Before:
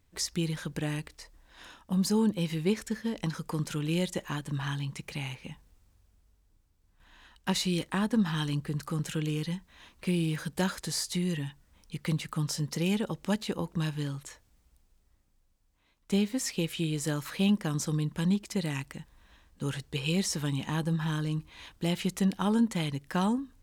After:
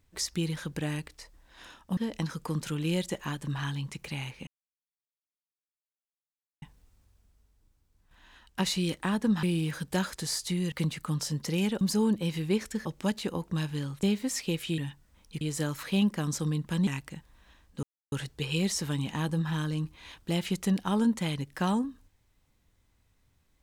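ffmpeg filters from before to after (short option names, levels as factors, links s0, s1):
-filter_complex "[0:a]asplit=12[s0][s1][s2][s3][s4][s5][s6][s7][s8][s9][s10][s11];[s0]atrim=end=1.972[s12];[s1]atrim=start=3.008:end=5.51,asetpts=PTS-STARTPTS,afade=t=out:st=2.498:d=0.004:c=hsin,apad=pad_dur=2.15[s13];[s2]atrim=start=5.51:end=8.322,asetpts=PTS-STARTPTS,afade=t=in:d=0.004:c=hsin[s14];[s3]atrim=start=10.078:end=11.372[s15];[s4]atrim=start=11.998:end=13.092[s16];[s5]atrim=start=1.968:end=3.012[s17];[s6]atrim=start=13.088:end=14.272[s18];[s7]atrim=start=16.128:end=16.882[s19];[s8]atrim=start=11.368:end=12.002[s20];[s9]atrim=start=16.878:end=18.342[s21];[s10]atrim=start=18.698:end=19.66,asetpts=PTS-STARTPTS,afade=t=out:st=0.958:d=0.004:c=hsin,apad=pad_dur=0.29[s22];[s11]atrim=start=19.66,asetpts=PTS-STARTPTS,afade=t=in:d=0.004:c=hsin[s23];[s13][s14]concat=n=2:v=0:a=1[s24];[s12][s24]acrossfade=d=0.004:c1=hsin:c2=hsin[s25];[s25][s15]acrossfade=d=0.004:c1=hsin:c2=hsin[s26];[s26][s16]acrossfade=d=0.004:c1=hsin:c2=hsin[s27];[s27][s17]acrossfade=d=0.004:c1=hsin:c2=hsin[s28];[s28][s18]acrossfade=d=0.004:c1=hsin:c2=hsin[s29];[s29][s19]acrossfade=d=0.004:c1=hsin:c2=hsin[s30];[s30][s20]acrossfade=d=0.004:c1=hsin:c2=hsin[s31];[s31][s21]acrossfade=d=0.004:c1=hsin:c2=hsin[s32];[s22][s23]concat=n=2:v=0:a=1[s33];[s32][s33]acrossfade=d=0.004:c1=hsin:c2=hsin"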